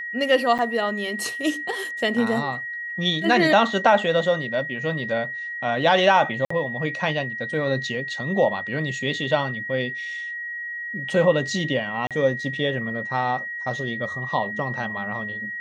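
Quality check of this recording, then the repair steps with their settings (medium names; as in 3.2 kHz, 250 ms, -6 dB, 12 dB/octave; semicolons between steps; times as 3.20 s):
whine 1.9 kHz -29 dBFS
0.58–0.59 s: dropout 7.8 ms
6.45–6.50 s: dropout 54 ms
12.07–12.11 s: dropout 37 ms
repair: band-stop 1.9 kHz, Q 30; interpolate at 0.58 s, 7.8 ms; interpolate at 6.45 s, 54 ms; interpolate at 12.07 s, 37 ms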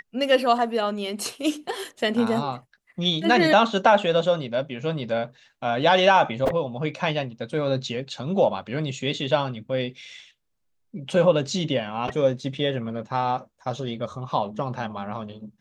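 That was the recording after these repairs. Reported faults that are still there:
nothing left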